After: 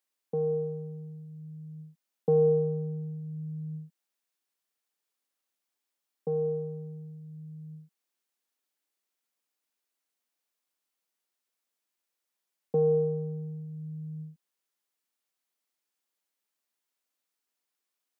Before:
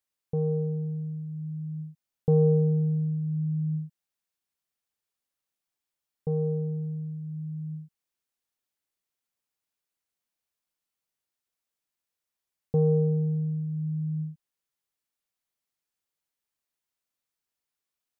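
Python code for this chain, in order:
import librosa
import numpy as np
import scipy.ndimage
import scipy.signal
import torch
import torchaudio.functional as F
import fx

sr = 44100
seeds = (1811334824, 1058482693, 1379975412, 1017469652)

y = scipy.signal.sosfilt(scipy.signal.butter(4, 210.0, 'highpass', fs=sr, output='sos'), x)
y = y * 10.0 ** (2.0 / 20.0)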